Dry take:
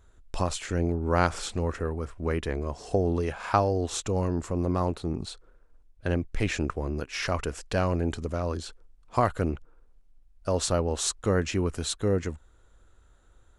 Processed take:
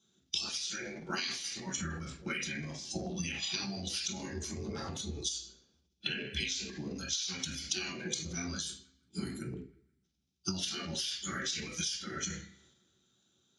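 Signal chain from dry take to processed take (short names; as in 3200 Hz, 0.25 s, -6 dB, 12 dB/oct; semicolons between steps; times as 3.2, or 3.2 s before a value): spectral noise reduction 19 dB; spectral gate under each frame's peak -15 dB weak; HPF 65 Hz; band shelf 1200 Hz -9 dB 3 oct; spectral gain 8.66–10.04, 440–7300 Hz -17 dB; weighting filter D; reverb RT60 0.35 s, pre-delay 3 ms, DRR -5.5 dB; compressor 16:1, threshold -38 dBFS, peak gain reduction 19.5 dB; transient shaper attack +4 dB, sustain +8 dB; narrowing echo 0.158 s, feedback 43%, band-pass 1700 Hz, level -23.5 dB; gain +3.5 dB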